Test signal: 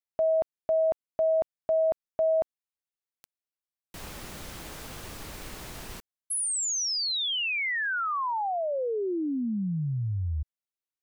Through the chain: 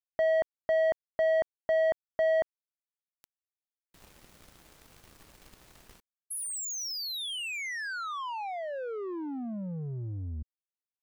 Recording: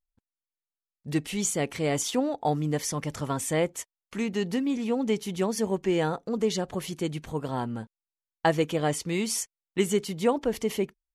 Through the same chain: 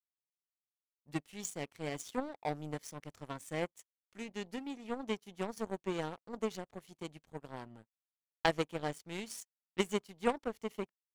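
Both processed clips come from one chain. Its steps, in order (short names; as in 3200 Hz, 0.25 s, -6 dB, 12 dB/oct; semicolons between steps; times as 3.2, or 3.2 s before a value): power-law curve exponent 2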